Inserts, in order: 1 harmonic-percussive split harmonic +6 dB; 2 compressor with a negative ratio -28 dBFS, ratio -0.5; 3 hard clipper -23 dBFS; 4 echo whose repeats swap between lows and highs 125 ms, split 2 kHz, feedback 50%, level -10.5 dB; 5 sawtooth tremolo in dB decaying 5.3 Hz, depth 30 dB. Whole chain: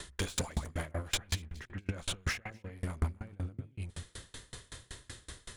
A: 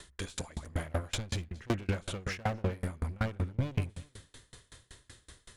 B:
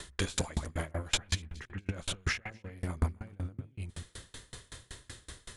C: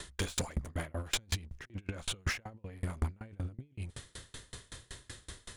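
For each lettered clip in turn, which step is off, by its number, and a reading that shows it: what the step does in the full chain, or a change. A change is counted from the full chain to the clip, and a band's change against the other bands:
2, crest factor change -3.0 dB; 3, distortion -12 dB; 4, crest factor change -2.0 dB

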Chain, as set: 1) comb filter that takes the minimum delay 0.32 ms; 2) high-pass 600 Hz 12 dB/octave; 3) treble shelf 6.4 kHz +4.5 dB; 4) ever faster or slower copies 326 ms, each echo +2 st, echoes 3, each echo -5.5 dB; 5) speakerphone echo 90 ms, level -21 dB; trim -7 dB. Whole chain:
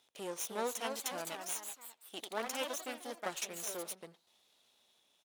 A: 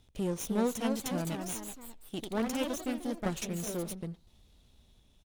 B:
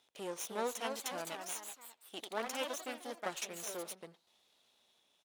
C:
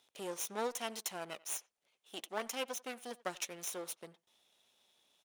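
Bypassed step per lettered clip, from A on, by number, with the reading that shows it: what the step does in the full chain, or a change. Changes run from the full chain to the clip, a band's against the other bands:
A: 2, 125 Hz band +20.5 dB; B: 3, 8 kHz band -2.5 dB; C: 4, loudness change -1.0 LU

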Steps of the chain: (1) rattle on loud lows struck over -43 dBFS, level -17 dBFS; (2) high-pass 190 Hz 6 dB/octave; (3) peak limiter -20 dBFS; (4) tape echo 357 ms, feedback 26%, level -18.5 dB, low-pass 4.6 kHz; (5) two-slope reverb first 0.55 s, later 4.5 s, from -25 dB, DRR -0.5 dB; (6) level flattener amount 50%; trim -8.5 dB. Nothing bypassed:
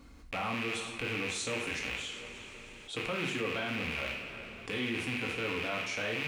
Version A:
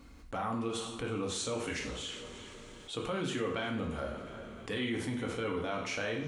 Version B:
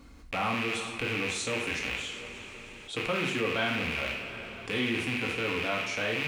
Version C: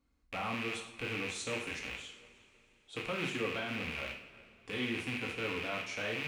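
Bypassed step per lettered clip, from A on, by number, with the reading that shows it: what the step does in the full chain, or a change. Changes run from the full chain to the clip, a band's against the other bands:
1, 2 kHz band -7.5 dB; 3, mean gain reduction 2.5 dB; 6, 8 kHz band -2.0 dB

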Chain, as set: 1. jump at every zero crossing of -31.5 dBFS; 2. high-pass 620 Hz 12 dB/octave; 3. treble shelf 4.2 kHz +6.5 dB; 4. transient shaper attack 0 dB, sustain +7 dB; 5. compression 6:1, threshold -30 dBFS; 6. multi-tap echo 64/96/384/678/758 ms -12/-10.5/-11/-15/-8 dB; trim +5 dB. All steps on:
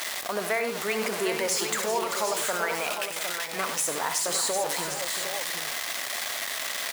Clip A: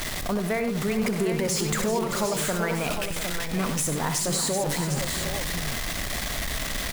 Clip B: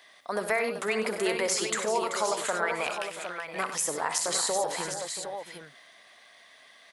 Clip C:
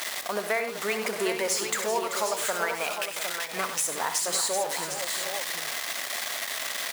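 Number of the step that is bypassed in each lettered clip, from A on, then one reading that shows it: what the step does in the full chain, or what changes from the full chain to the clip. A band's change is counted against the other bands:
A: 2, 125 Hz band +18.5 dB; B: 1, distortion -11 dB; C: 4, 125 Hz band -2.5 dB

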